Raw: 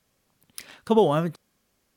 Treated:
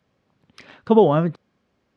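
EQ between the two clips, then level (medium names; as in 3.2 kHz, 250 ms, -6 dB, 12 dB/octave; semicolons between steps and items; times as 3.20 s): high-pass 72 Hz; tape spacing loss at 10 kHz 40 dB; treble shelf 3.5 kHz +10 dB; +6.5 dB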